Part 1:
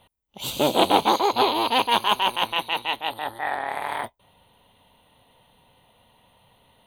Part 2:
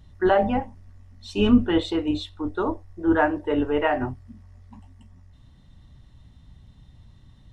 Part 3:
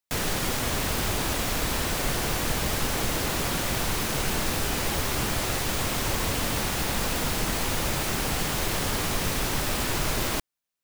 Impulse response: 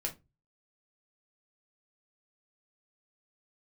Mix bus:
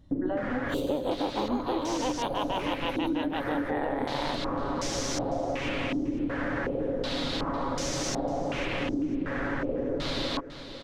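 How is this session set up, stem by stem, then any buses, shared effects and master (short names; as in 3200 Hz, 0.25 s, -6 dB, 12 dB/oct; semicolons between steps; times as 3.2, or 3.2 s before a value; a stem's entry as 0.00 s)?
+0.5 dB, 0.30 s, no send, no echo send, high shelf 4800 Hz -9 dB; vocal rider within 3 dB
-7.0 dB, 0.00 s, no send, no echo send, dry
-2.5 dB, 0.00 s, no send, echo send -18 dB, comb 7.2 ms, depth 42%; stepped low-pass 2.7 Hz 310–6000 Hz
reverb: off
echo: feedback echo 0.5 s, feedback 39%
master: bell 2600 Hz -3 dB 0.31 oct; small resonant body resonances 290/520 Hz, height 12 dB, ringing for 35 ms; compressor 6:1, threshold -27 dBFS, peak gain reduction 17.5 dB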